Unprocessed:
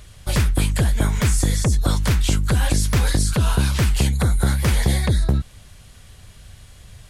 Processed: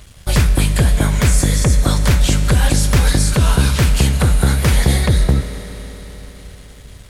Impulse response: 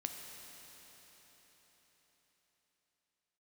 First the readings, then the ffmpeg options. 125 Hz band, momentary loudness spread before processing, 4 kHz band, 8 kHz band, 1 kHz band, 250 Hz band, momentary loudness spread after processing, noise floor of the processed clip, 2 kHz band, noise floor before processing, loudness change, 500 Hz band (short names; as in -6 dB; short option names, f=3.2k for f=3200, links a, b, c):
+5.0 dB, 1 LU, +5.5 dB, +5.5 dB, +5.0 dB, +5.0 dB, 6 LU, -40 dBFS, +5.5 dB, -47 dBFS, +5.0 dB, +6.0 dB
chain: -filter_complex "[0:a]aeval=exprs='sgn(val(0))*max(abs(val(0))-0.00299,0)':c=same,asplit=2[a][b];[1:a]atrim=start_sample=2205[c];[b][c]afir=irnorm=-1:irlink=0,volume=4dB[d];[a][d]amix=inputs=2:normalize=0,volume=-2dB"